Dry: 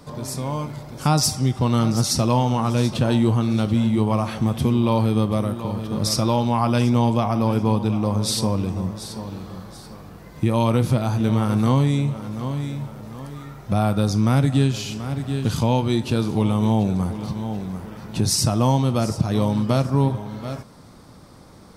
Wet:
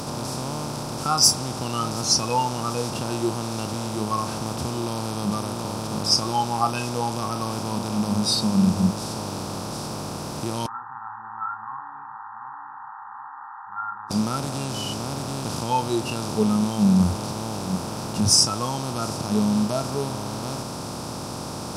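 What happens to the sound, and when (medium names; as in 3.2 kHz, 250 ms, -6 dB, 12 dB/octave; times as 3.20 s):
10.66–14.11 s: brick-wall FIR band-pass 800–1900 Hz
whole clip: spectral levelling over time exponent 0.2; spectral noise reduction 22 dB; trim +5.5 dB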